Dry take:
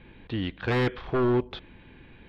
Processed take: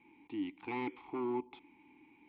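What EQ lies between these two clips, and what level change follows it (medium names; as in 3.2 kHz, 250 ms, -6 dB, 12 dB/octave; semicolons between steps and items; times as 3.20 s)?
vowel filter u; distance through air 160 m; bass shelf 420 Hz -10.5 dB; +6.0 dB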